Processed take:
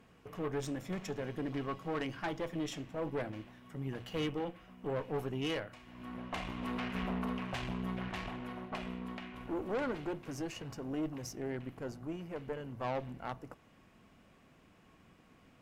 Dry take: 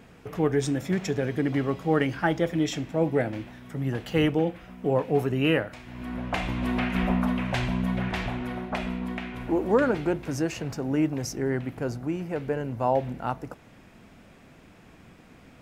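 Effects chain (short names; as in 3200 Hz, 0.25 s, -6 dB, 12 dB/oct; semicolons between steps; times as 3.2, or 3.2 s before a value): notches 60/120 Hz; small resonant body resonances 1100/2900 Hz, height 9 dB; tube stage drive 23 dB, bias 0.7; gain -7 dB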